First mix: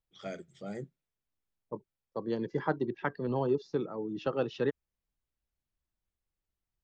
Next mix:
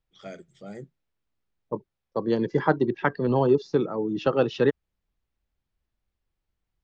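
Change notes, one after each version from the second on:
second voice +9.0 dB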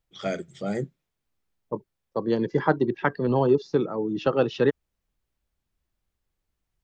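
first voice +11.5 dB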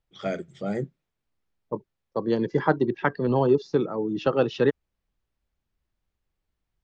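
first voice: add treble shelf 4.4 kHz -9.5 dB

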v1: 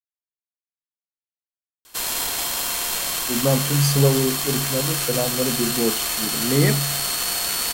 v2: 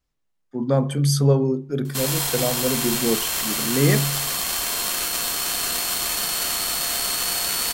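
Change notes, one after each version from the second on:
speech: entry -2.75 s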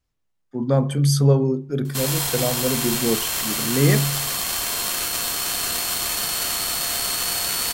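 master: add peaking EQ 98 Hz +10.5 dB 0.44 oct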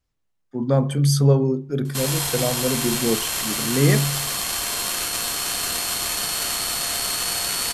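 background: add brick-wall FIR low-pass 13 kHz

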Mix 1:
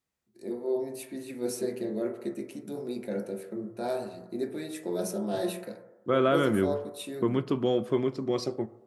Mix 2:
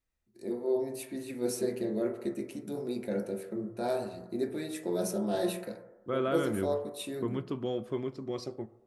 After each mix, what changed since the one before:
second voice -7.5 dB; master: remove high-pass 110 Hz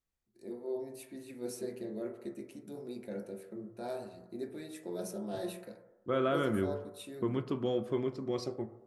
first voice -8.0 dB; second voice: send +6.0 dB

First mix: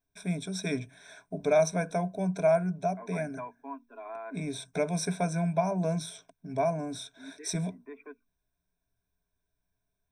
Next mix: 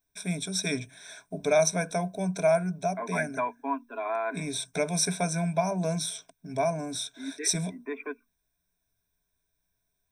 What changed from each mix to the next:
second voice +9.5 dB; master: add treble shelf 2.5 kHz +10.5 dB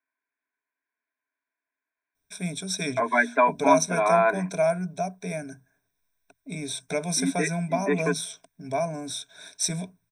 first voice: entry +2.15 s; second voice +10.0 dB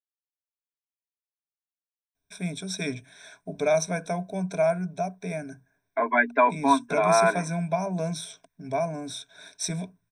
first voice: add treble shelf 5.4 kHz -8 dB; second voice: entry +3.00 s

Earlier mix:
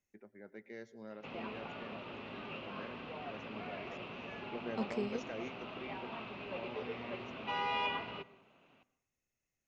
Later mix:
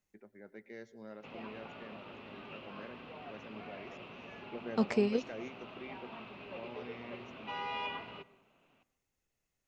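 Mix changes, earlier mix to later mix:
second voice +8.5 dB; background -3.5 dB

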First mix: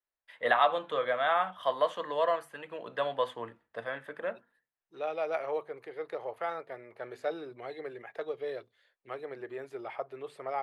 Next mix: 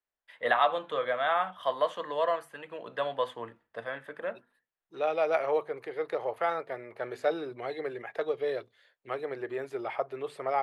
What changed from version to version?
second voice +5.5 dB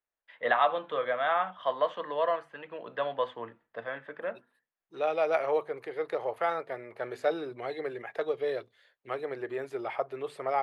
first voice: add band-pass 100–3500 Hz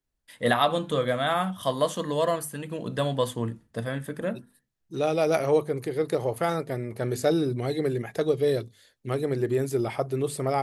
first voice: remove band-pass 100–3500 Hz; master: remove three-band isolator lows -24 dB, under 490 Hz, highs -24 dB, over 3.1 kHz

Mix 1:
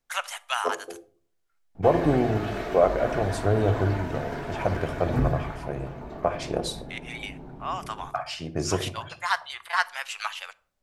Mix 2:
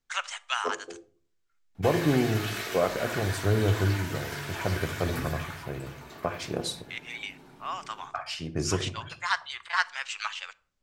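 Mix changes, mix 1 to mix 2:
first voice: add steep low-pass 8.2 kHz 48 dB/octave; background: add tilt EQ +4.5 dB/octave; master: add peaking EQ 670 Hz -8 dB 1 oct

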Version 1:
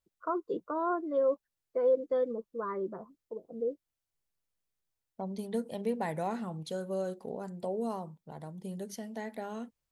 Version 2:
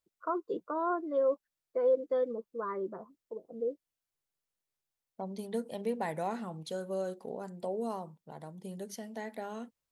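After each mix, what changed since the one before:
master: add bass shelf 140 Hz -9 dB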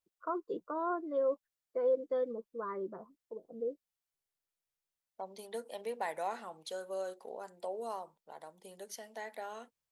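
first voice -3.0 dB; second voice: add high-pass 550 Hz 12 dB/octave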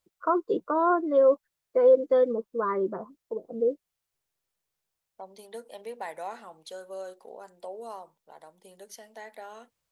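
first voice +11.5 dB

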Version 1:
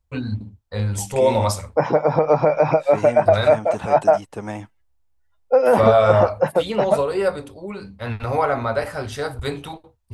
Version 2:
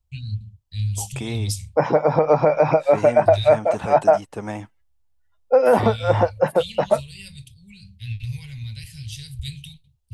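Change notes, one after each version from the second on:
first voice: add elliptic band-stop 150–2800 Hz, stop band 40 dB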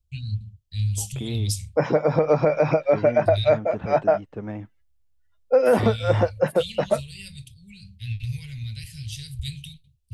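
second voice: add tape spacing loss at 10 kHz 39 dB; master: add peaking EQ 870 Hz -8.5 dB 0.86 oct

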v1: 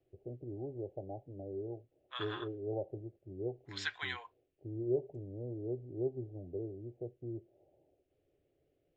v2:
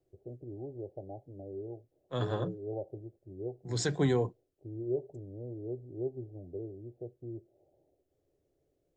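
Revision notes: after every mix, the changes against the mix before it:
second voice: remove high-pass 1.1 kHz 24 dB/octave; master: remove resonant low-pass 2.8 kHz, resonance Q 2.4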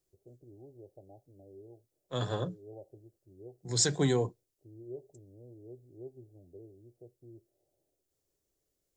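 first voice -10.5 dB; master: add tone controls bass 0 dB, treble +12 dB

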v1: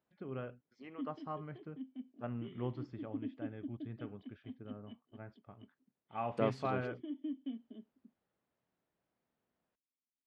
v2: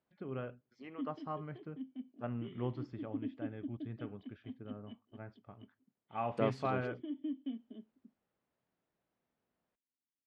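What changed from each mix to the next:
reverb: on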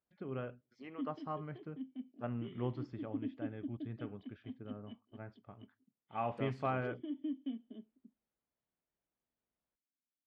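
second voice -9.5 dB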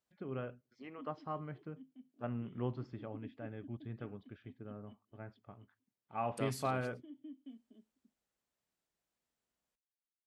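second voice: remove tape spacing loss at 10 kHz 35 dB; background -11.0 dB

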